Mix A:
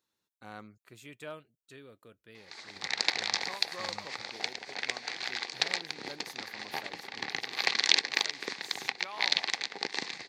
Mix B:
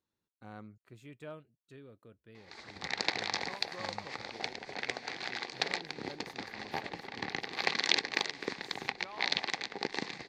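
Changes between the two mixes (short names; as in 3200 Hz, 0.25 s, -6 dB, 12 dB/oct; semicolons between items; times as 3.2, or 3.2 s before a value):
speech -4.5 dB; master: add tilt -2.5 dB/oct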